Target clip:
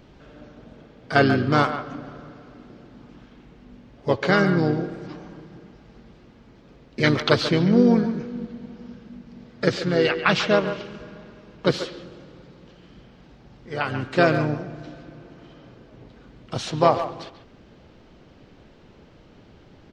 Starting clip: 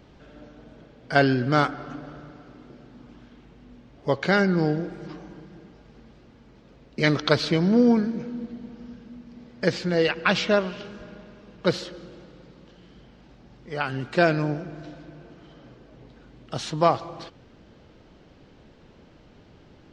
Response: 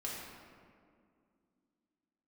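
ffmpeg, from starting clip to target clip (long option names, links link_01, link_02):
-filter_complex "[0:a]asplit=2[link_01][link_02];[link_02]asetrate=35002,aresample=44100,atempo=1.25992,volume=-7dB[link_03];[link_01][link_03]amix=inputs=2:normalize=0,asplit=2[link_04][link_05];[link_05]adelay=140,highpass=300,lowpass=3400,asoftclip=type=hard:threshold=-10dB,volume=-10dB[link_06];[link_04][link_06]amix=inputs=2:normalize=0,volume=1dB"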